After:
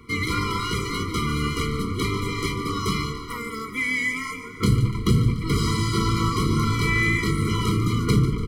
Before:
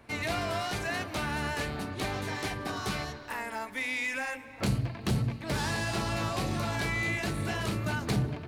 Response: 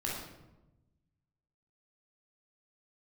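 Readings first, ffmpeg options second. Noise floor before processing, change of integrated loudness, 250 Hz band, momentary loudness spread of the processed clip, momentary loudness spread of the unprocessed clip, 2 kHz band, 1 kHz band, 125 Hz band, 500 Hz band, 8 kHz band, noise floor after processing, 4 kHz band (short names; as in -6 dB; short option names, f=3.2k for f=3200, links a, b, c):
-45 dBFS, +8.5 dB, +10.0 dB, 6 LU, 4 LU, +6.0 dB, +6.5 dB, +10.5 dB, +5.5 dB, +6.5 dB, -35 dBFS, +7.0 dB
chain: -filter_complex "[0:a]asplit=6[a][b][c][d][e][f];[b]adelay=146,afreqshift=-78,volume=-12dB[g];[c]adelay=292,afreqshift=-156,volume=-17.8dB[h];[d]adelay=438,afreqshift=-234,volume=-23.7dB[i];[e]adelay=584,afreqshift=-312,volume=-29.5dB[j];[f]adelay=730,afreqshift=-390,volume=-35.4dB[k];[a][g][h][i][j][k]amix=inputs=6:normalize=0,asplit=2[l][m];[1:a]atrim=start_sample=2205,asetrate=57330,aresample=44100[n];[m][n]afir=irnorm=-1:irlink=0,volume=-14dB[o];[l][o]amix=inputs=2:normalize=0,afftfilt=real='re*eq(mod(floor(b*sr/1024/480),2),0)':imag='im*eq(mod(floor(b*sr/1024/480),2),0)':win_size=1024:overlap=0.75,volume=8.5dB"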